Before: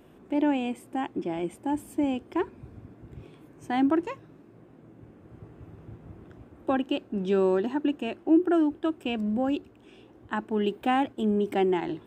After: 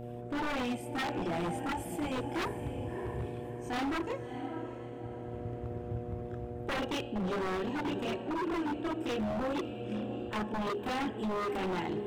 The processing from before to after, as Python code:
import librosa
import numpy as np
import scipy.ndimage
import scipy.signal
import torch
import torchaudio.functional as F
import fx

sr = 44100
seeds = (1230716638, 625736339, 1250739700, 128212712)

p1 = fx.chorus_voices(x, sr, voices=6, hz=0.84, base_ms=28, depth_ms=1.3, mix_pct=60)
p2 = fx.dmg_buzz(p1, sr, base_hz=120.0, harmonics=6, level_db=-46.0, tilt_db=-3, odd_only=False)
p3 = fx.peak_eq(p2, sr, hz=330.0, db=-8.0, octaves=2.9, at=(1.72, 2.16))
p4 = fx.rider(p3, sr, range_db=4, speed_s=0.5)
p5 = p4 + fx.echo_diffused(p4, sr, ms=628, feedback_pct=42, wet_db=-11.0, dry=0)
p6 = fx.rev_schroeder(p5, sr, rt60_s=1.0, comb_ms=27, drr_db=14.5)
y = 10.0 ** (-28.0 / 20.0) * (np.abs((p6 / 10.0 ** (-28.0 / 20.0) + 3.0) % 4.0 - 2.0) - 1.0)